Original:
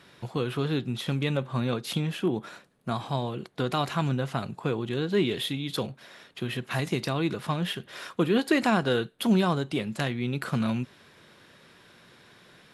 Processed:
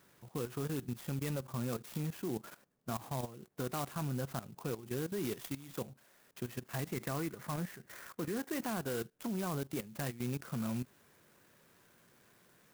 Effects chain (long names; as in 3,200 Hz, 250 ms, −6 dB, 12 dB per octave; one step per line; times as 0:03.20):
0:06.93–0:08.50: high shelf with overshoot 2,700 Hz −9 dB, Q 3
output level in coarse steps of 15 dB
soft clipping −18 dBFS, distortion −25 dB
converter with an unsteady clock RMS 0.072 ms
level −5.5 dB